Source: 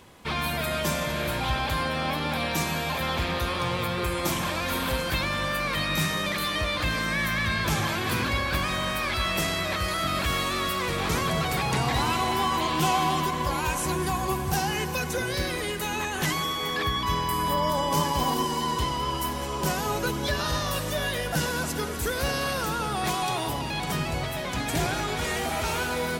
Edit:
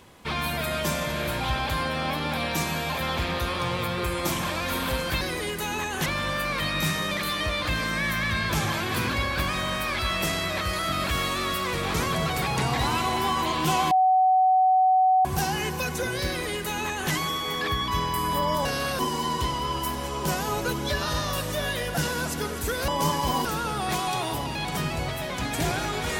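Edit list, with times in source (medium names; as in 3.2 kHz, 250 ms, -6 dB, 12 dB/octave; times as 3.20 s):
13.06–14.40 s: bleep 750 Hz -16 dBFS
15.42–16.27 s: copy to 5.21 s
17.80–18.37 s: swap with 22.26–22.60 s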